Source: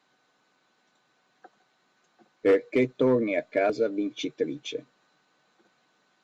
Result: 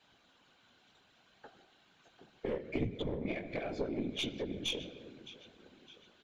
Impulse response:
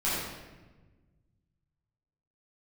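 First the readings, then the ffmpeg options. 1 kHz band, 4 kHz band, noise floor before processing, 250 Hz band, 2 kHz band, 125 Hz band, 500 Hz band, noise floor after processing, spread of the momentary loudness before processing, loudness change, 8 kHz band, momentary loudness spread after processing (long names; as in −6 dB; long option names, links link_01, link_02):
−13.0 dB, +1.5 dB, −70 dBFS, −10.0 dB, −10.0 dB, −3.0 dB, −14.5 dB, −68 dBFS, 10 LU, −12.0 dB, can't be measured, 19 LU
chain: -filter_complex "[0:a]acrossover=split=190[link_01][link_02];[link_02]acompressor=threshold=-32dB:ratio=6[link_03];[link_01][link_03]amix=inputs=2:normalize=0,asplit=2[link_04][link_05];[1:a]atrim=start_sample=2205[link_06];[link_05][link_06]afir=irnorm=-1:irlink=0,volume=-21.5dB[link_07];[link_04][link_07]amix=inputs=2:normalize=0,acompressor=threshold=-35dB:ratio=3,equalizer=frequency=3100:width=1.9:gain=10.5,flanger=delay=15:depth=5.7:speed=0.72,aecho=1:1:611|1222|1833|2444:0.141|0.0622|0.0273|0.012,afftfilt=real='hypot(re,im)*cos(2*PI*random(0))':imag='hypot(re,im)*sin(2*PI*random(1))':win_size=512:overlap=0.75,asoftclip=type=tanh:threshold=-32dB,lowshelf=frequency=320:gain=7,aeval=exprs='0.0355*(cos(1*acos(clip(val(0)/0.0355,-1,1)))-cos(1*PI/2))+0.01*(cos(2*acos(clip(val(0)/0.0355,-1,1)))-cos(2*PI/2))':channel_layout=same,volume=6dB"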